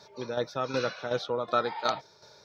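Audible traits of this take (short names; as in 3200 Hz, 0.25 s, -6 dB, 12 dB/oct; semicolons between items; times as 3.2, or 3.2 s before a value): tremolo saw down 2.7 Hz, depth 60%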